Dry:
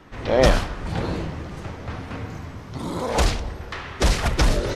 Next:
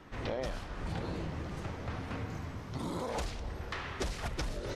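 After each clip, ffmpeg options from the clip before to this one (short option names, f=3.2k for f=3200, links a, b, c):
-af "acompressor=threshold=-27dB:ratio=16,volume=-5.5dB"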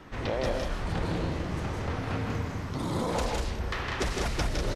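-af "aecho=1:1:160.3|195.3:0.631|0.562,volume=5dB"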